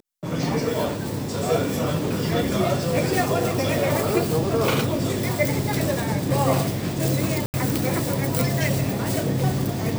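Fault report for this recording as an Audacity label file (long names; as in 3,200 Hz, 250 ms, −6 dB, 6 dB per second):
7.460000	7.540000	drop-out 79 ms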